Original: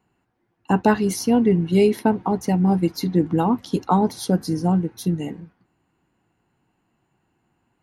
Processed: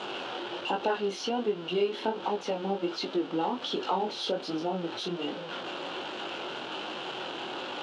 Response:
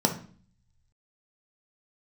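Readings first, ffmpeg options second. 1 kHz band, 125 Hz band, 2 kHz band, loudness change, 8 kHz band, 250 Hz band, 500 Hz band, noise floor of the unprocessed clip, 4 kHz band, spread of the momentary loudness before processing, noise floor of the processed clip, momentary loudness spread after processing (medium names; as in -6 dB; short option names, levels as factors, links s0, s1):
-6.5 dB, -21.0 dB, -3.0 dB, -12.0 dB, -13.0 dB, -15.0 dB, -7.0 dB, -71 dBFS, +3.5 dB, 7 LU, -40 dBFS, 6 LU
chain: -af "aeval=exprs='val(0)+0.5*0.0562*sgn(val(0))':c=same,aexciter=amount=2.4:drive=2.3:freq=2800,flanger=delay=19:depth=6.3:speed=1.3,highpass=350,equalizer=f=370:t=q:w=4:g=7,equalizer=f=550:t=q:w=4:g=8,equalizer=f=840:t=q:w=4:g=4,equalizer=f=1400:t=q:w=4:g=6,equalizer=f=2000:t=q:w=4:g=-5,equalizer=f=3000:t=q:w=4:g=6,lowpass=f=4300:w=0.5412,lowpass=f=4300:w=1.3066,acompressor=threshold=0.0562:ratio=2,volume=0.596"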